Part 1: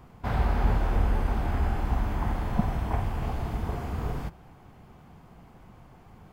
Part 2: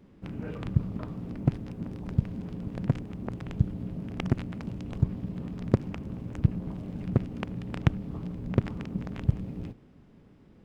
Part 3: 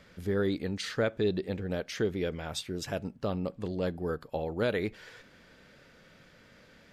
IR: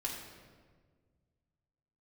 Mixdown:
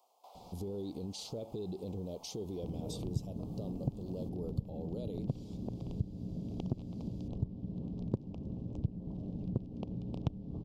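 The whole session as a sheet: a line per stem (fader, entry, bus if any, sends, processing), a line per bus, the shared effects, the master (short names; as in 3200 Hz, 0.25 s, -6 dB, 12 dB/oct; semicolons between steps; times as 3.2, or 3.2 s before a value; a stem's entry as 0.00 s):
-4.5 dB, 0.00 s, no send, HPF 700 Hz 24 dB/oct; compressor 2.5:1, threshold -47 dBFS, peak gain reduction 11 dB
+2.0 dB, 2.40 s, no send, LPF 4000 Hz 12 dB/oct
+3.0 dB, 0.35 s, no send, limiter -30.5 dBFS, peak gain reduction 11.5 dB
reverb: off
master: Butterworth band-stop 1700 Hz, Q 0.51; compressor 2:1, threshold -41 dBFS, peak gain reduction 15.5 dB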